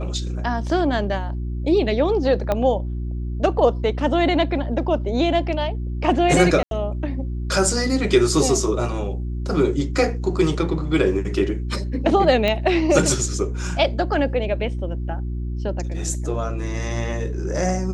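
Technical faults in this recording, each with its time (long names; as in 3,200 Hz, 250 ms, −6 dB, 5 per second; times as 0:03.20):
mains hum 60 Hz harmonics 6 −26 dBFS
0:02.52: click −9 dBFS
0:06.63–0:06.71: drop-out 82 ms
0:12.48: click −9 dBFS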